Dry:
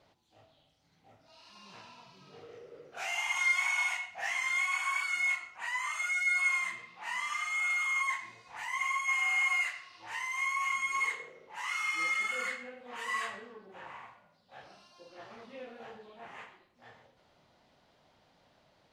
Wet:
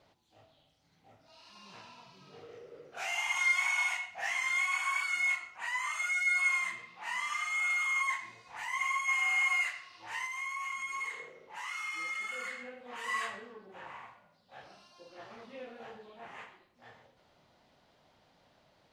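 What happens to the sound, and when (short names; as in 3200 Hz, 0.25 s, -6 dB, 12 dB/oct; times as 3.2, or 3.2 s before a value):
10.26–13.04 compressor 2:1, threshold -39 dBFS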